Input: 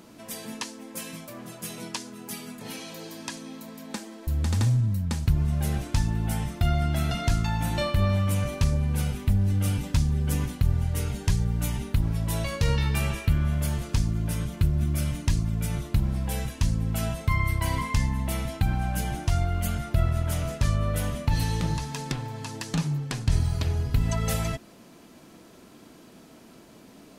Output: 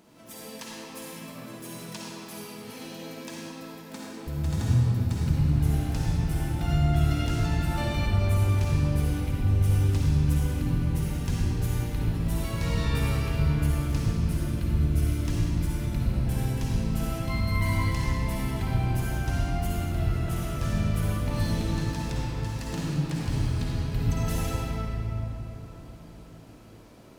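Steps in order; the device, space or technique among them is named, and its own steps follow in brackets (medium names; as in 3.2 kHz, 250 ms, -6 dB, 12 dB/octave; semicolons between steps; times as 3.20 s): shimmer-style reverb (harmony voices +12 st -10 dB; reverberation RT60 3.9 s, pre-delay 47 ms, DRR -6 dB); trim -9 dB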